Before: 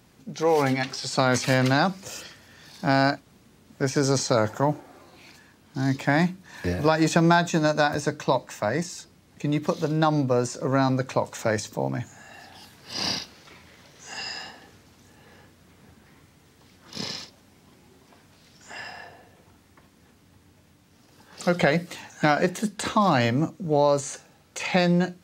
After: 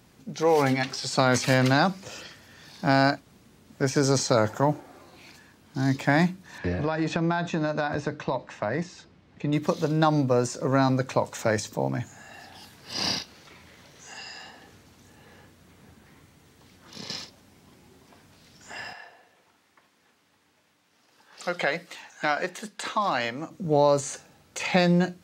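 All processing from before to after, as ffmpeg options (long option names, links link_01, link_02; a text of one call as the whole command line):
ffmpeg -i in.wav -filter_complex "[0:a]asettb=1/sr,asplit=3[link_01][link_02][link_03];[link_01]atrim=end=1.934[link_04];[link_02]atrim=start=1.93:end=2.85,asetpts=PTS-STARTPTS,afade=type=in:duration=0.004:curve=qsin,afade=type=out:start_time=0.916:duration=0.004:curve=qsin,acrossover=split=5400[link_05][link_06];[link_06]acompressor=threshold=-54dB:ratio=4:attack=1:release=60[link_07];[link_05][link_07]amix=inputs=2:normalize=0,highpass=46[link_08];[link_03]atrim=start=2.846[link_09];[link_04][link_08]acrossfade=duration=0.004:curve1=hsin:curve2=qsin[link_10];[link_10][link_09]acrossfade=duration=0.004:curve1=qsin:curve2=hsin,asettb=1/sr,asplit=3[link_11][link_12][link_13];[link_11]atrim=end=6.584[link_14];[link_12]atrim=start=6.58:end=9.53,asetpts=PTS-STARTPTS,afade=type=in:duration=0.004:curve=qsin,afade=type=out:start_time=2.946:duration=0.004:curve=qsin,lowpass=3500,acompressor=threshold=-22dB:ratio=4:attack=3.2:release=140:knee=1:detection=peak[link_15];[link_13]atrim=start=9.526[link_16];[link_14][link_15]acrossfade=duration=0.004:curve1=hsin:curve2=qsin[link_17];[link_17][link_16]acrossfade=duration=0.004:curve1=qsin:curve2=hsin,asettb=1/sr,asplit=3[link_18][link_19][link_20];[link_18]atrim=end=13.224[link_21];[link_19]atrim=start=13.22:end=17.1,asetpts=PTS-STARTPTS,afade=type=in:duration=0.004:curve=qsin,afade=type=out:start_time=3.876:duration=0.004:curve=qsin,acompressor=threshold=-47dB:ratio=1.5:attack=3.2:release=140:knee=1:detection=peak,bandreject=frequency=5100:width=29[link_22];[link_20]atrim=start=17.096[link_23];[link_21][link_22]acrossfade=duration=0.004:curve1=hsin:curve2=qsin[link_24];[link_24][link_23]acrossfade=duration=0.004:curve1=qsin:curve2=hsin,asettb=1/sr,asplit=3[link_25][link_26][link_27];[link_25]atrim=end=18.934[link_28];[link_26]atrim=start=18.93:end=23.51,asetpts=PTS-STARTPTS,afade=type=in:duration=0.004:curve=qsin,afade=type=out:start_time=4.576:duration=0.004:curve=qsin,highpass=frequency=980:poles=1,highshelf=frequency=5600:gain=-8.5[link_29];[link_27]atrim=start=23.506[link_30];[link_28][link_29]acrossfade=duration=0.004:curve1=hsin:curve2=qsin[link_31];[link_31][link_30]acrossfade=duration=0.004:curve1=qsin:curve2=hsin" out.wav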